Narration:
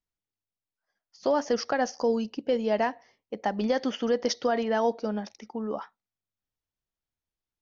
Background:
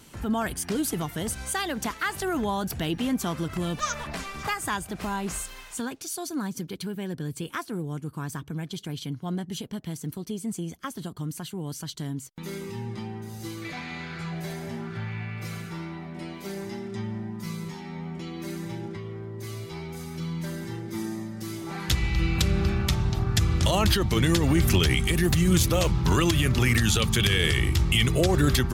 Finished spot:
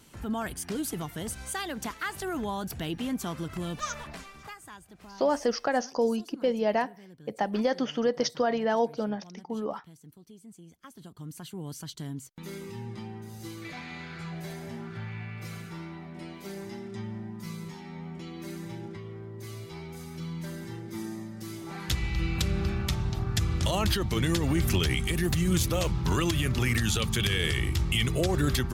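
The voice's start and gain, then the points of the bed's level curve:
3.95 s, -0.5 dB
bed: 3.98 s -5 dB
4.67 s -18 dB
10.61 s -18 dB
11.55 s -4.5 dB

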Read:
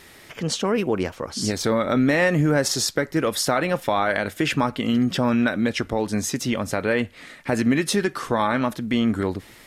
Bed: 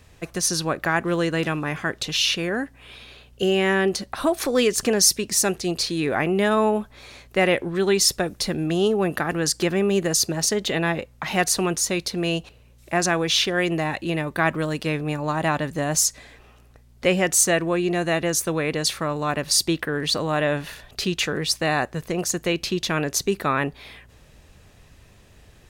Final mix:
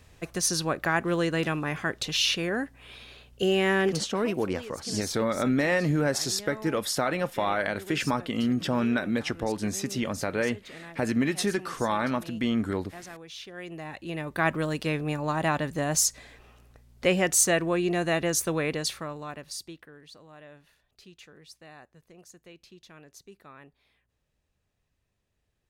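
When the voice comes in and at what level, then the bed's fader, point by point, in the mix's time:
3.50 s, -5.5 dB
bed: 3.87 s -3.5 dB
4.33 s -22.5 dB
13.35 s -22.5 dB
14.47 s -3.5 dB
18.65 s -3.5 dB
20.08 s -27 dB

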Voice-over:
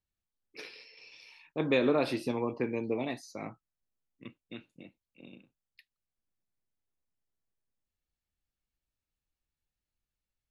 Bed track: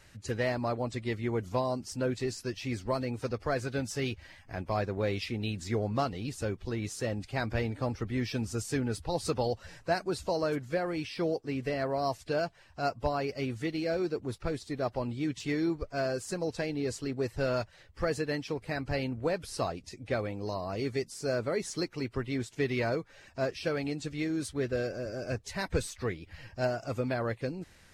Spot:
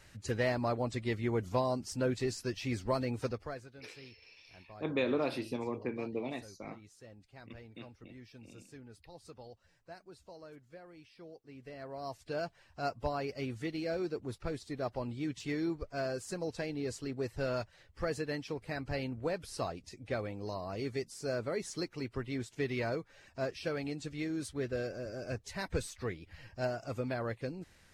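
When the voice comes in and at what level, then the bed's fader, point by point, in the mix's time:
3.25 s, -5.0 dB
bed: 3.26 s -1 dB
3.75 s -21 dB
11.32 s -21 dB
12.51 s -4.5 dB

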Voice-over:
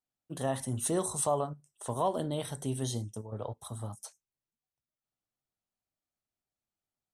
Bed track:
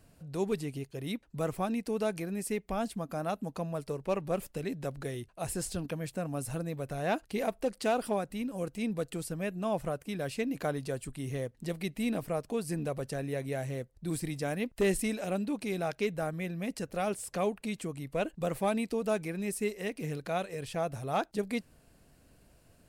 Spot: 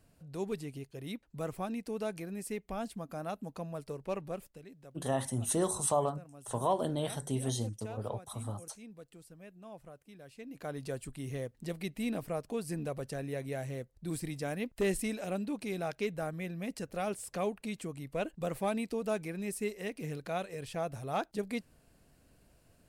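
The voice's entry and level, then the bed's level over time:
4.65 s, 0.0 dB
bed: 4.23 s -5 dB
4.7 s -17.5 dB
10.33 s -17.5 dB
10.85 s -3 dB

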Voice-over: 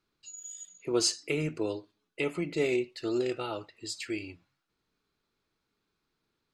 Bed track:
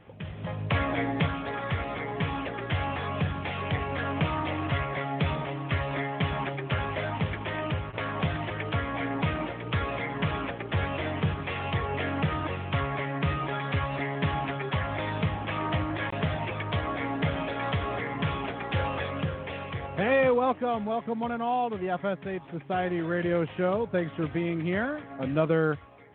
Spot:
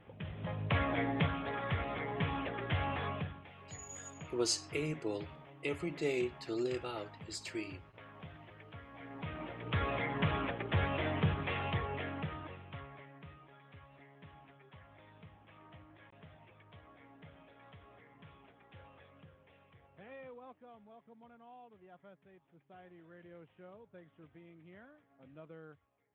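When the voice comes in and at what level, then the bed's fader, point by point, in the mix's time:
3.45 s, -6.0 dB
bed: 3.08 s -5.5 dB
3.48 s -22 dB
8.88 s -22 dB
9.85 s -4 dB
11.55 s -4 dB
13.47 s -28 dB

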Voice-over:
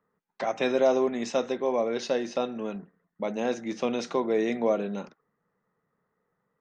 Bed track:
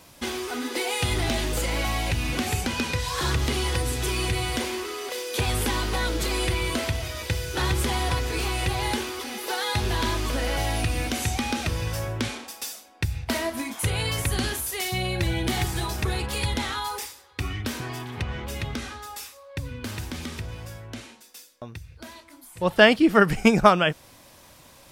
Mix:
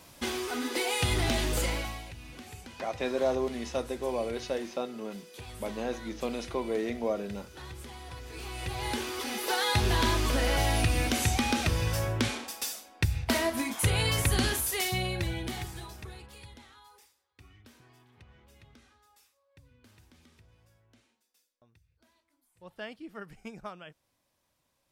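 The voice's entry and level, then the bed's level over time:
2.40 s, -5.5 dB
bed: 1.67 s -2.5 dB
2.12 s -19.5 dB
8.05 s -19.5 dB
9.28 s -0.5 dB
14.77 s -0.5 dB
16.7 s -26 dB

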